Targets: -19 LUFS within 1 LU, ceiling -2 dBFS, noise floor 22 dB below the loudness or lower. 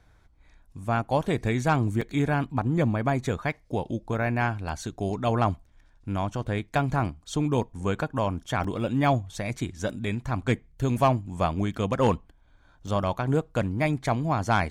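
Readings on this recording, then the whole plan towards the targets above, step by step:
dropouts 3; longest dropout 4.5 ms; loudness -27.5 LUFS; peak -11.5 dBFS; loudness target -19.0 LUFS
-> interpolate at 2.01/8.64/12.87, 4.5 ms; gain +8.5 dB

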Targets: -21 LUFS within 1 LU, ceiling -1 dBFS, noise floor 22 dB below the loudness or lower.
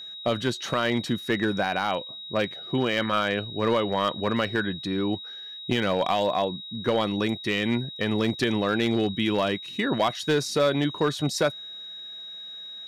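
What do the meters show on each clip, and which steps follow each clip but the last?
clipped 0.7%; flat tops at -15.5 dBFS; steady tone 3800 Hz; tone level -37 dBFS; loudness -26.0 LUFS; peak -15.5 dBFS; loudness target -21.0 LUFS
-> clip repair -15.5 dBFS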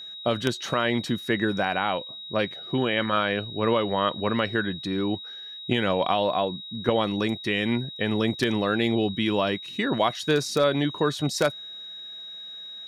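clipped 0.0%; steady tone 3800 Hz; tone level -37 dBFS
-> notch 3800 Hz, Q 30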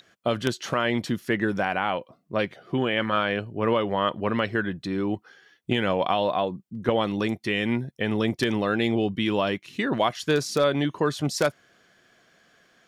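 steady tone none; loudness -26.0 LUFS; peak -6.5 dBFS; loudness target -21.0 LUFS
-> gain +5 dB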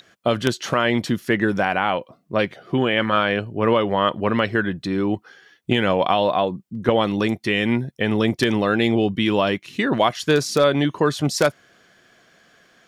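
loudness -21.0 LUFS; peak -1.5 dBFS; noise floor -59 dBFS

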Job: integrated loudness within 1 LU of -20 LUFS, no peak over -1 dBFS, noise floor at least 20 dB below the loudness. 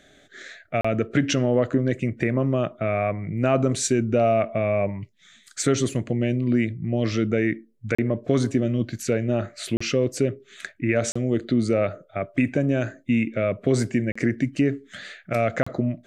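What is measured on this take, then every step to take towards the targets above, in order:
dropouts 6; longest dropout 35 ms; loudness -24.0 LUFS; peak -6.5 dBFS; loudness target -20.0 LUFS
-> interpolate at 0.81/7.95/9.77/11.12/14.12/15.63, 35 ms; gain +4 dB

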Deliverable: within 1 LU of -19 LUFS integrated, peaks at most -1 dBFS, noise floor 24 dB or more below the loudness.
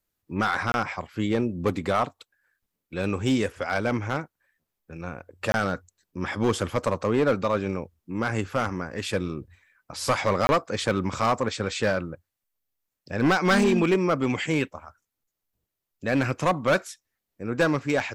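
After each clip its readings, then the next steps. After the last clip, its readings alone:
clipped 1.2%; flat tops at -15.5 dBFS; dropouts 3; longest dropout 21 ms; loudness -26.0 LUFS; peak -15.5 dBFS; loudness target -19.0 LUFS
-> clip repair -15.5 dBFS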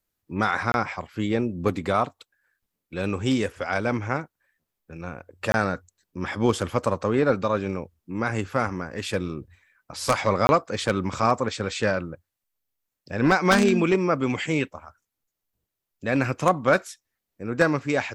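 clipped 0.0%; dropouts 3; longest dropout 21 ms
-> interpolate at 0.72/5.52/10.47, 21 ms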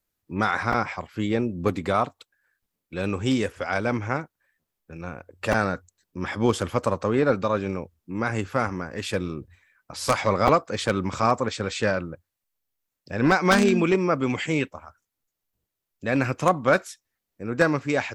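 dropouts 0; loudness -25.0 LUFS; peak -5.5 dBFS; loudness target -19.0 LUFS
-> gain +6 dB; limiter -1 dBFS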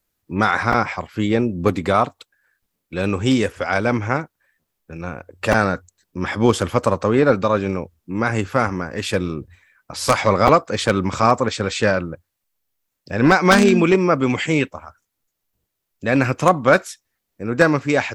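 loudness -19.0 LUFS; peak -1.0 dBFS; noise floor -78 dBFS

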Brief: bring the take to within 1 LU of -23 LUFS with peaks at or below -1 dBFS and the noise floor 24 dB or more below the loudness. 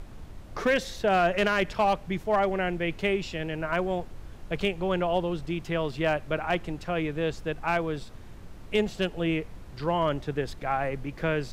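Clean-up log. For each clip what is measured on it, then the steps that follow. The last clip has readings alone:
clipped 0.3%; flat tops at -16.5 dBFS; noise floor -45 dBFS; noise floor target -53 dBFS; loudness -28.5 LUFS; peak -16.5 dBFS; loudness target -23.0 LUFS
-> clip repair -16.5 dBFS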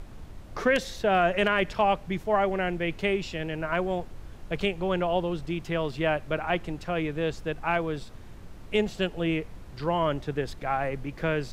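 clipped 0.0%; noise floor -45 dBFS; noise floor target -52 dBFS
-> noise print and reduce 7 dB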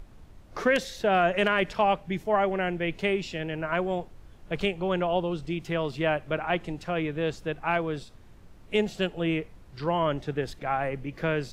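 noise floor -51 dBFS; noise floor target -52 dBFS
-> noise print and reduce 6 dB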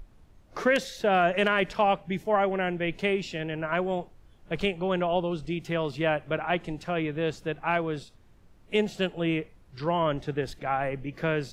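noise floor -56 dBFS; loudness -28.0 LUFS; peak -9.0 dBFS; loudness target -23.0 LUFS
-> gain +5 dB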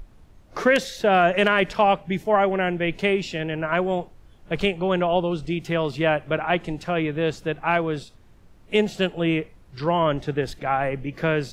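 loudness -23.0 LUFS; peak -4.0 dBFS; noise floor -51 dBFS

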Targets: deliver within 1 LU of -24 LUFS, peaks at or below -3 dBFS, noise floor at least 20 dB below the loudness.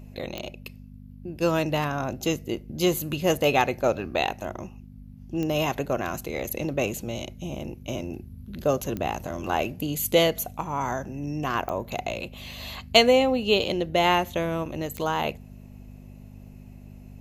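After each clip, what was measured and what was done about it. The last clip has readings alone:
clicks 5; hum 50 Hz; harmonics up to 250 Hz; hum level -41 dBFS; loudness -26.0 LUFS; peak -2.0 dBFS; loudness target -24.0 LUFS
-> de-click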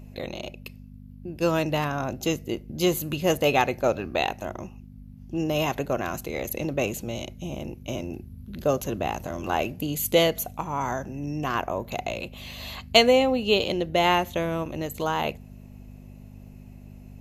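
clicks 0; hum 50 Hz; harmonics up to 250 Hz; hum level -41 dBFS
-> de-hum 50 Hz, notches 5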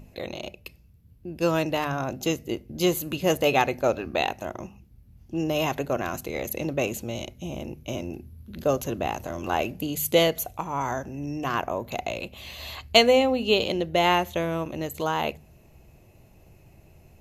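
hum none; loudness -26.0 LUFS; peak -2.0 dBFS; loudness target -24.0 LUFS
-> gain +2 dB; limiter -3 dBFS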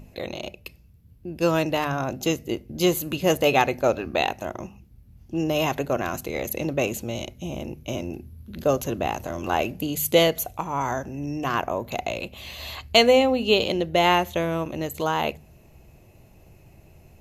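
loudness -24.5 LUFS; peak -3.0 dBFS; noise floor -53 dBFS

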